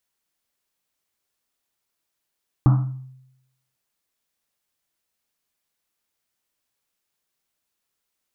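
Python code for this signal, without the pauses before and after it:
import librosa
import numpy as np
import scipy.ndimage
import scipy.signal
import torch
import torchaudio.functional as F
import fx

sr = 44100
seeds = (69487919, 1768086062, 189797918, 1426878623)

y = fx.risset_drum(sr, seeds[0], length_s=1.1, hz=130.0, decay_s=0.87, noise_hz=990.0, noise_width_hz=640.0, noise_pct=10)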